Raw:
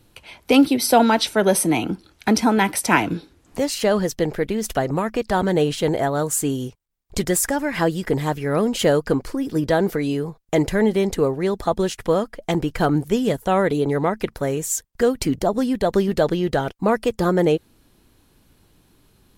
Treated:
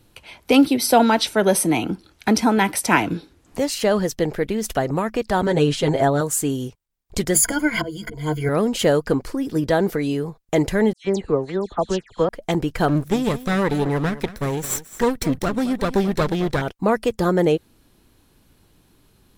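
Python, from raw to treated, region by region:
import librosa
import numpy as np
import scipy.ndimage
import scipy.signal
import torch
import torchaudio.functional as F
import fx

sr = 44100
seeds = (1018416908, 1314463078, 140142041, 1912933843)

y = fx.chain(x, sr, fx.lowpass(hz=9600.0, slope=12),
    fx.comb(ms=7.4, depth=0.77), at=(5.46, 6.21))
y = fx.chain(y, sr, fx.notch(hz=1000.0, q=26.0),
    fx.auto_swell(attack_ms=366.0),
    fx.ripple_eq(per_octave=1.8, db=18), at=(7.34, 8.49))
y = fx.chain(y, sr, fx.lowpass(hz=7700.0, slope=24),
    fx.dispersion(late='lows', ms=116.0, hz=2600.0),
    fx.upward_expand(threshold_db=-37.0, expansion=1.5), at=(10.93, 12.29))
y = fx.chain(y, sr, fx.lower_of_two(delay_ms=0.52),
    fx.echo_single(ms=217, db=-15.5), at=(12.88, 16.62))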